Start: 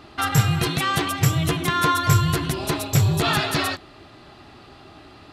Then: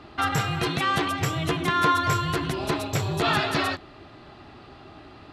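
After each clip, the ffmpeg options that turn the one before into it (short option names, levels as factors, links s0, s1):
-filter_complex "[0:a]aemphasis=mode=reproduction:type=50kf,acrossover=split=260|3900[s0][s1][s2];[s0]acompressor=threshold=0.0398:ratio=6[s3];[s3][s1][s2]amix=inputs=3:normalize=0"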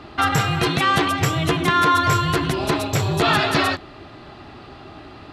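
-af "alimiter=level_in=3.98:limit=0.891:release=50:level=0:latency=1,volume=0.501"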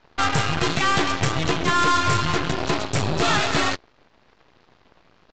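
-af "acontrast=66,aeval=exprs='0.668*(cos(1*acos(clip(val(0)/0.668,-1,1)))-cos(1*PI/2))+0.15*(cos(3*acos(clip(val(0)/0.668,-1,1)))-cos(3*PI/2))+0.106*(cos(4*acos(clip(val(0)/0.668,-1,1)))-cos(4*PI/2))+0.0299*(cos(7*acos(clip(val(0)/0.668,-1,1)))-cos(7*PI/2))':c=same,aresample=16000,asoftclip=type=tanh:threshold=0.237,aresample=44100"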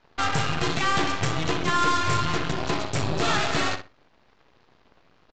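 -filter_complex "[0:a]asplit=2[s0][s1];[s1]adelay=61,lowpass=f=3600:p=1,volume=0.398,asplit=2[s2][s3];[s3]adelay=61,lowpass=f=3600:p=1,volume=0.21,asplit=2[s4][s5];[s5]adelay=61,lowpass=f=3600:p=1,volume=0.21[s6];[s0][s2][s4][s6]amix=inputs=4:normalize=0,volume=0.631"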